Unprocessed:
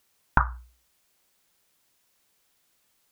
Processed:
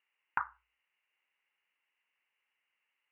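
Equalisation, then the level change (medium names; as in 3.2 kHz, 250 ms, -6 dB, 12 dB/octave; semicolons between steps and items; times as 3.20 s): rippled Chebyshev low-pass 2.9 kHz, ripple 6 dB; differentiator; peaking EQ 670 Hz -11.5 dB 0.29 oct; +9.5 dB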